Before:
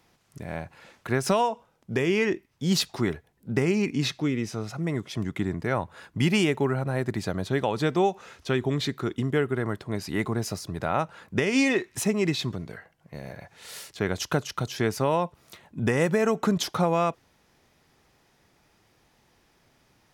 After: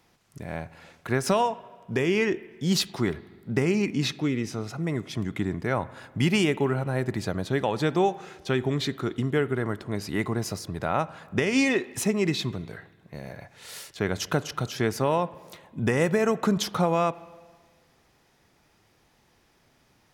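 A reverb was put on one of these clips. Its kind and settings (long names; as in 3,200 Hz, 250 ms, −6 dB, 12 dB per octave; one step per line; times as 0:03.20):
spring reverb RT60 1.5 s, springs 39/49 ms, chirp 60 ms, DRR 17.5 dB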